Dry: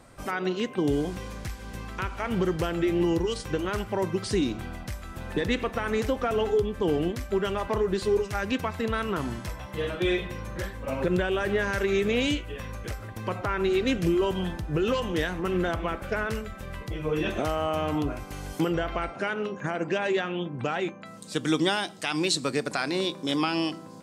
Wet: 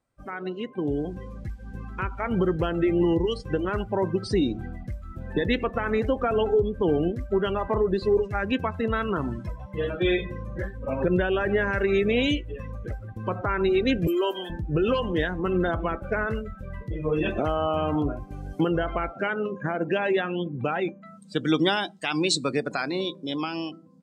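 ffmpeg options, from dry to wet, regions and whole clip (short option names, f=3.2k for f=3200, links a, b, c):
-filter_complex "[0:a]asettb=1/sr,asplit=3[a][b][c];[a]atrim=end=14.074[d];[b]atrim=start=14.07:end=14.5,asetpts=PTS-STARTPTS,afade=t=in:d=0.004:c=qsin,afade=t=out:st=0.426:d=0.004:c=qsin,highpass=f=260:w=0.5412,highpass=f=260:w=1.3066,aemphasis=mode=production:type=bsi[e];[c]atrim=start=14.496[f];[d][e]acrossfade=d=0.004:c1=hsin:c2=qsin[g];[g][f]acrossfade=d=0.004:c1=qsin:c2=hsin,afftdn=nr=22:nf=-34,dynaudnorm=f=110:g=21:m=7dB,volume=-4.5dB"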